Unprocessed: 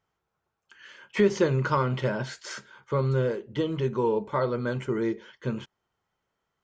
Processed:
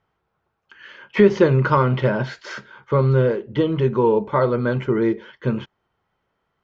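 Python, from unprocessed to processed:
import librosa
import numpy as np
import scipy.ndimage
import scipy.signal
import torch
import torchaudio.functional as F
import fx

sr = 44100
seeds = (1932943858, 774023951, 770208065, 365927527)

y = fx.air_absorb(x, sr, metres=200.0)
y = F.gain(torch.from_numpy(y), 8.5).numpy()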